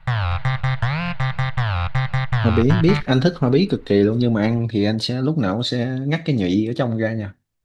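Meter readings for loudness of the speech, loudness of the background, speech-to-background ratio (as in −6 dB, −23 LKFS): −19.5 LKFS, −22.5 LKFS, 3.0 dB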